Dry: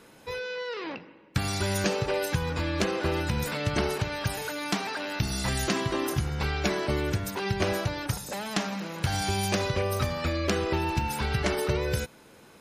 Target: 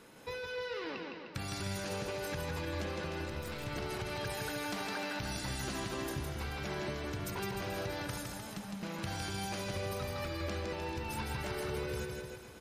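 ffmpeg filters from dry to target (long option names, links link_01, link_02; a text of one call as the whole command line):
ffmpeg -i in.wav -filter_complex "[0:a]asettb=1/sr,asplit=3[link_01][link_02][link_03];[link_01]atrim=end=8.224[link_04];[link_02]atrim=start=8.22:end=8.83,asetpts=PTS-STARTPTS,afade=type=in:duration=0.004:curve=qsin,afade=type=out:start_time=0.606:duration=0.004:curve=qsin,acrossover=split=160[link_05][link_06];[link_06]acompressor=threshold=-45dB:ratio=6[link_07];[link_05][link_07]amix=inputs=2:normalize=0[link_08];[link_03]atrim=start=8.826[link_09];[link_04][link_08]acrossfade=duration=0.004:curve1=hsin:curve2=qsin[link_10];[link_10][link_09]acrossfade=duration=0.004:curve1=qsin:curve2=hsin,alimiter=limit=-21.5dB:level=0:latency=1,acompressor=threshold=-33dB:ratio=6,asettb=1/sr,asplit=3[link_11][link_12][link_13];[link_11]atrim=end=3.254[link_14];[link_12]atrim=start=3.25:end=3.67,asetpts=PTS-STARTPTS,afade=type=in:duration=0.004:curve=qsin,afade=type=out:start_time=0.416:duration=0.004:curve=qsin,aeval=exprs='(tanh(35.5*val(0)+0.8)-tanh(0.8))/35.5':channel_layout=same[link_15];[link_13]atrim=start=3.666[link_16];[link_14][link_15]acrossfade=duration=0.004:curve1=hsin:curve2=qsin[link_17];[link_17][link_16]acrossfade=duration=0.004:curve1=qsin:curve2=hsin,aecho=1:1:160|304|433.6|550.2|655.2:0.631|0.398|0.251|0.158|0.1,volume=-3.5dB" out.wav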